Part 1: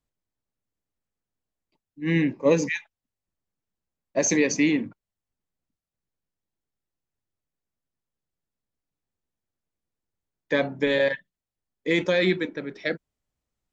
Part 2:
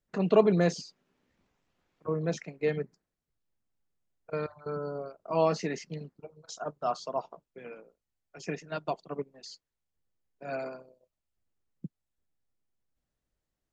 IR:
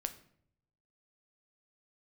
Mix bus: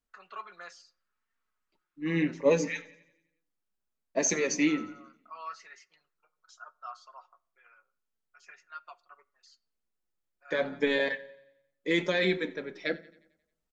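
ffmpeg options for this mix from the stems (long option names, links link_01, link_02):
-filter_complex "[0:a]equalizer=frequency=120:width=1.5:gain=-10.5,volume=-3dB,asplit=3[link_01][link_02][link_03];[link_02]volume=-5dB[link_04];[link_03]volume=-18dB[link_05];[1:a]highpass=frequency=1300:width_type=q:width=4.4,aecho=1:1:5.5:0.4,volume=-13.5dB,asplit=3[link_06][link_07][link_08];[link_07]volume=-7dB[link_09];[link_08]apad=whole_len=605131[link_10];[link_01][link_10]sidechaincompress=threshold=-48dB:ratio=8:attack=16:release=156[link_11];[2:a]atrim=start_sample=2205[link_12];[link_04][link_09]amix=inputs=2:normalize=0[link_13];[link_13][link_12]afir=irnorm=-1:irlink=0[link_14];[link_05]aecho=0:1:89|178|267|356|445|534|623:1|0.51|0.26|0.133|0.0677|0.0345|0.0176[link_15];[link_11][link_06][link_14][link_15]amix=inputs=4:normalize=0,flanger=delay=4.4:depth=1.5:regen=-40:speed=0.73:shape=sinusoidal"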